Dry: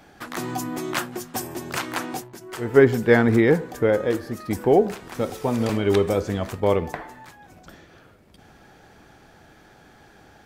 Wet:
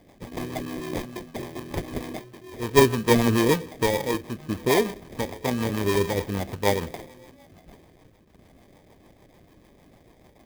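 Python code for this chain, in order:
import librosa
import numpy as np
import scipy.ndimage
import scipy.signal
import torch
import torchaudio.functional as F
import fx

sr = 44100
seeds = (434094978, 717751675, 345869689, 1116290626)

y = fx.sample_hold(x, sr, seeds[0], rate_hz=1400.0, jitter_pct=0)
y = fx.rotary(y, sr, hz=6.7)
y = fx.clock_jitter(y, sr, seeds[1], jitter_ms=0.025)
y = y * librosa.db_to_amplitude(-1.5)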